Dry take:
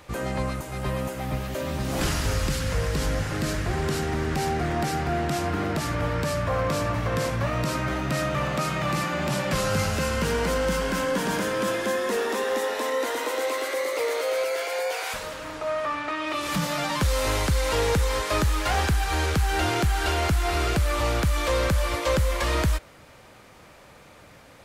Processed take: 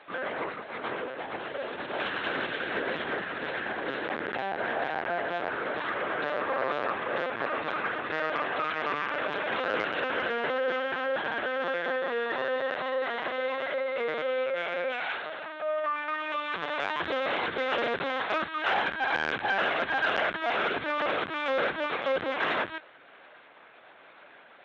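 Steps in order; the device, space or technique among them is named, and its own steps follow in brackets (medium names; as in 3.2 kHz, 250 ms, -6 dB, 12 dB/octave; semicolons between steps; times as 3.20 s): talking toy (LPC vocoder at 8 kHz pitch kept; high-pass 410 Hz 12 dB/octave; peaking EQ 1.6 kHz +7 dB 0.27 oct; saturation -12.5 dBFS, distortion -27 dB); trim -1.5 dB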